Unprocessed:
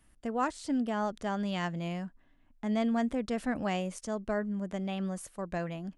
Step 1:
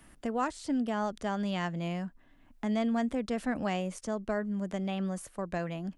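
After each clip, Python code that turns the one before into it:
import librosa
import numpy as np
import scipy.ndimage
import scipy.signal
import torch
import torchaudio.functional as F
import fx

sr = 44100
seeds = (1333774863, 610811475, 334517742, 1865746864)

y = fx.band_squash(x, sr, depth_pct=40)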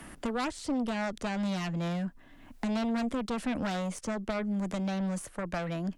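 y = fx.cheby_harmonics(x, sr, harmonics=(4, 5), levels_db=(-9, -9), full_scale_db=-18.5)
y = fx.band_squash(y, sr, depth_pct=40)
y = y * 10.0 ** (-5.5 / 20.0)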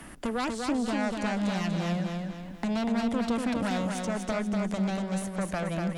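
y = fx.echo_feedback(x, sr, ms=242, feedback_pct=43, wet_db=-4)
y = y * 10.0 ** (1.5 / 20.0)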